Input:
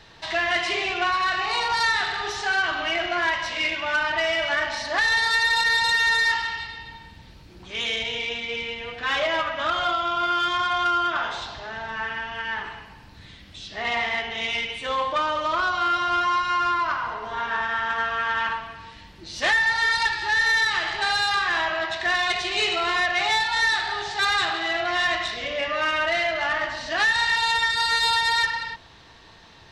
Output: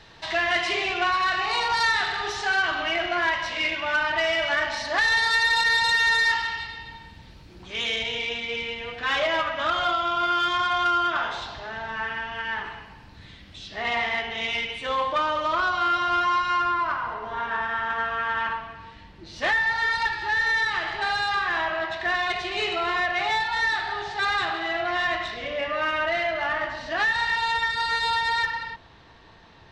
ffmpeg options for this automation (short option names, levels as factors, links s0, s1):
-af "asetnsamples=n=441:p=0,asendcmd='2.83 lowpass f 5200;4.16 lowpass f 9000;11.24 lowpass f 5200;16.62 lowpass f 2100',lowpass=f=8900:p=1"